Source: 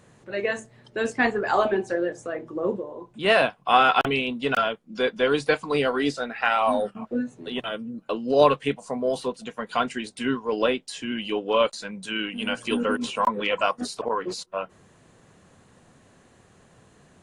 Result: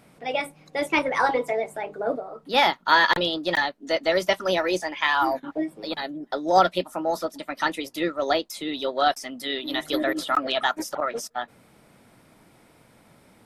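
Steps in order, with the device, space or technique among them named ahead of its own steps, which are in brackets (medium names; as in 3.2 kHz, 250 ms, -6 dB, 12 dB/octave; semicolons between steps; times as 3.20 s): nightcore (tape speed +28%)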